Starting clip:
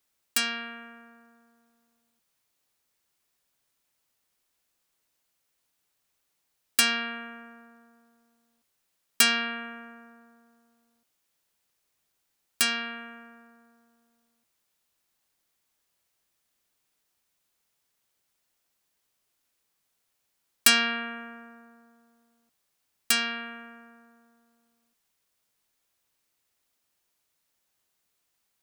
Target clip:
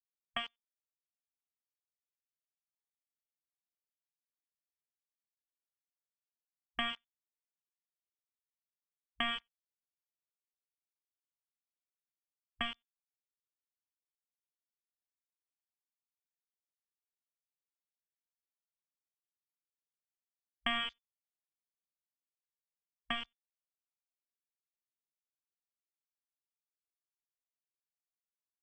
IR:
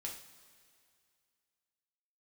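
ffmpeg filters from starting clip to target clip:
-filter_complex "[0:a]aeval=exprs='val(0)*gte(abs(val(0)),0.0841)':channel_layout=same,areverse,acompressor=mode=upward:threshold=-33dB:ratio=2.5,areverse,equalizer=frequency=390:width=0.72:gain=13,acompressor=threshold=-23dB:ratio=5,lowpass=frequency=3000:width_type=q:width=0.5098,lowpass=frequency=3000:width_type=q:width=0.6013,lowpass=frequency=3000:width_type=q:width=0.9,lowpass=frequency=3000:width_type=q:width=2.563,afreqshift=-3500,asplit=2[link_01][link_02];[link_02]adelay=93.29,volume=-27dB,highshelf=frequency=4000:gain=-2.1[link_03];[link_01][link_03]amix=inputs=2:normalize=0,afwtdn=0.00316,asubboost=boost=6.5:cutoff=170,volume=-3.5dB"

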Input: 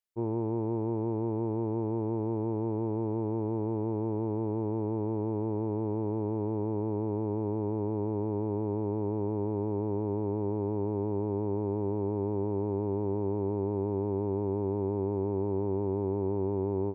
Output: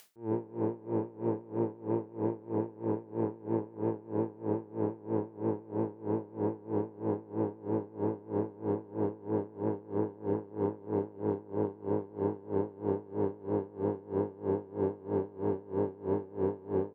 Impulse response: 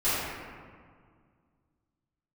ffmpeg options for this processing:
-filter_complex "[0:a]asplit=2[link_01][link_02];[link_02]asoftclip=type=tanh:threshold=-32.5dB,volume=-4dB[link_03];[link_01][link_03]amix=inputs=2:normalize=0,highpass=130,asplit=6[link_04][link_05][link_06][link_07][link_08][link_09];[link_05]adelay=135,afreqshift=61,volume=-7dB[link_10];[link_06]adelay=270,afreqshift=122,volume=-13.9dB[link_11];[link_07]adelay=405,afreqshift=183,volume=-20.9dB[link_12];[link_08]adelay=540,afreqshift=244,volume=-27.8dB[link_13];[link_09]adelay=675,afreqshift=305,volume=-34.7dB[link_14];[link_04][link_10][link_11][link_12][link_13][link_14]amix=inputs=6:normalize=0,acompressor=mode=upward:threshold=-34dB:ratio=2.5,aeval=exprs='val(0)*pow(10,-24*(0.5-0.5*cos(2*PI*3.1*n/s))/20)':channel_layout=same"

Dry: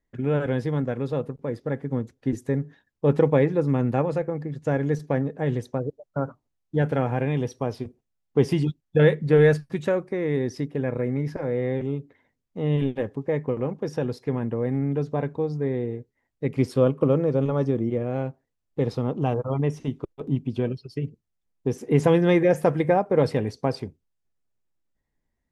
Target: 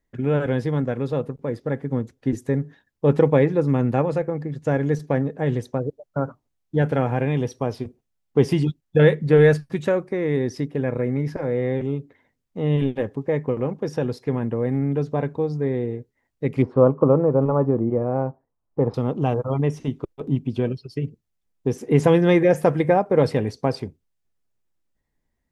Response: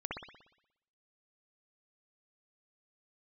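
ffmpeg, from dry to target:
-filter_complex "[0:a]asettb=1/sr,asplit=3[link_01][link_02][link_03];[link_01]atrim=end=16.624[link_04];[link_02]atrim=start=16.62:end=18.94,asetpts=PTS-STARTPTS,afade=type=in:duration=0.004:curve=qsin,afade=type=out:start_time=2.316:duration=0.004:curve=qsin,lowpass=frequency=1000:width_type=q:width=2.1[link_05];[link_03]atrim=start=18.936[link_06];[link_04][link_05]acrossfade=duration=0.004:curve1=hsin:curve2=qsin[link_07];[link_07][link_06]acrossfade=duration=0.004:curve1=qsin:curve2=hsin,volume=2.5dB"

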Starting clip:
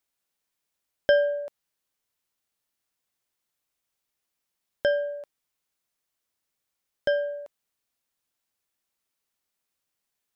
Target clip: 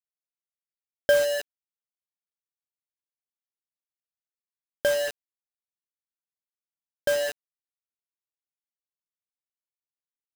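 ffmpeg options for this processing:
ffmpeg -i in.wav -af "acrusher=bits=4:mix=0:aa=0.000001" out.wav

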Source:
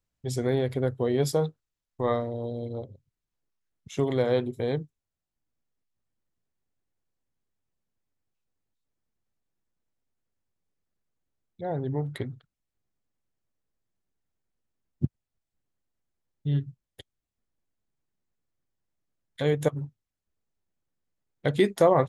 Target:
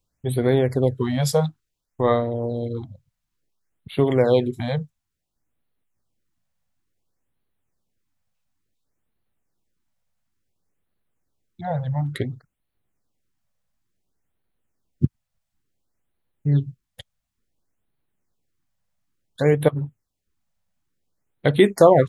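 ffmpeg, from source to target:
ffmpeg -i in.wav -af "afftfilt=real='re*(1-between(b*sr/1024,310*pow(6600/310,0.5+0.5*sin(2*PI*0.57*pts/sr))/1.41,310*pow(6600/310,0.5+0.5*sin(2*PI*0.57*pts/sr))*1.41))':imag='im*(1-between(b*sr/1024,310*pow(6600/310,0.5+0.5*sin(2*PI*0.57*pts/sr))/1.41,310*pow(6600/310,0.5+0.5*sin(2*PI*0.57*pts/sr))*1.41))':win_size=1024:overlap=0.75,volume=7dB" out.wav

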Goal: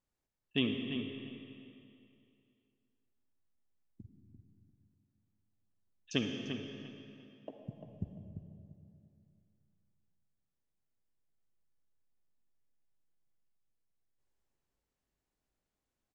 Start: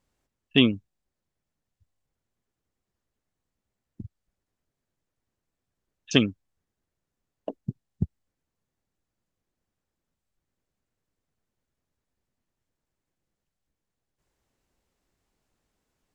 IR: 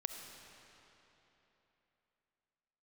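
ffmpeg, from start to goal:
-filter_complex "[0:a]asplit=2[link_01][link_02];[link_02]adelay=345,lowpass=frequency=2800:poles=1,volume=-7.5dB,asplit=2[link_03][link_04];[link_04]adelay=345,lowpass=frequency=2800:poles=1,volume=0.27,asplit=2[link_05][link_06];[link_06]adelay=345,lowpass=frequency=2800:poles=1,volume=0.27[link_07];[link_01][link_03][link_05][link_07]amix=inputs=4:normalize=0[link_08];[1:a]atrim=start_sample=2205,asetrate=57330,aresample=44100[link_09];[link_08][link_09]afir=irnorm=-1:irlink=0,volume=-8.5dB"

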